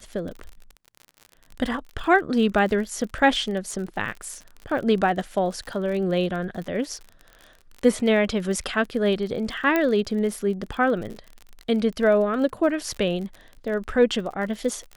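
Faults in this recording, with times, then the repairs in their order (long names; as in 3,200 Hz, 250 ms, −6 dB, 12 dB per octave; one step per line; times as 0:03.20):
surface crackle 43 per second −32 dBFS
0:09.76: click −9 dBFS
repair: click removal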